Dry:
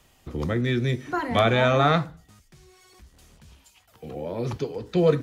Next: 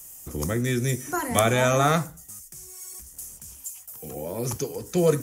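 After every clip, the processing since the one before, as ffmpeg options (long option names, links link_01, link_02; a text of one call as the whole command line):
ffmpeg -i in.wav -af "aexciter=amount=14.2:drive=6.1:freq=6000,volume=-1dB" out.wav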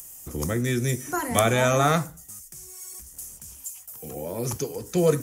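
ffmpeg -i in.wav -af "acompressor=mode=upward:threshold=-41dB:ratio=2.5" out.wav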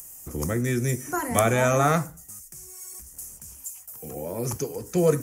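ffmpeg -i in.wav -af "equalizer=frequency=3600:width=2.2:gain=-8" out.wav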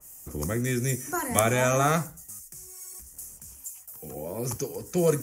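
ffmpeg -i in.wav -af "adynamicequalizer=threshold=0.0126:dfrequency=2200:dqfactor=0.7:tfrequency=2200:tqfactor=0.7:attack=5:release=100:ratio=0.375:range=2:mode=boostabove:tftype=highshelf,volume=-2.5dB" out.wav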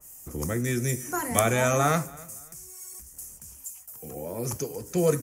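ffmpeg -i in.wav -af "aecho=1:1:281|562:0.0708|0.0227" out.wav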